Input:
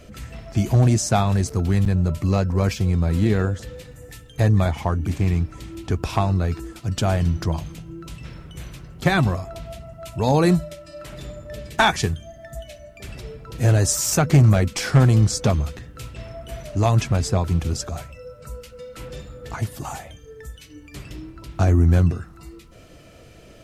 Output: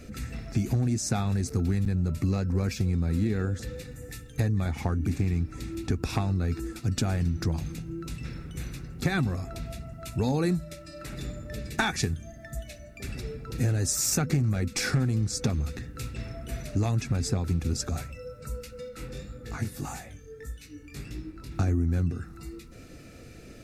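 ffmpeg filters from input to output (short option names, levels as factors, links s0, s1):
-filter_complex "[0:a]asplit=3[s0][s1][s2];[s0]afade=t=out:st=18.88:d=0.02[s3];[s1]flanger=delay=17:depth=6.1:speed=1.7,afade=t=in:st=18.88:d=0.02,afade=t=out:st=21.5:d=0.02[s4];[s2]afade=t=in:st=21.5:d=0.02[s5];[s3][s4][s5]amix=inputs=3:normalize=0,equalizer=f=250:t=o:w=0.33:g=6,equalizer=f=630:t=o:w=0.33:g=-9,equalizer=f=1000:t=o:w=0.33:g=-10,acompressor=threshold=0.0708:ratio=6,bandreject=f=3100:w=5.4"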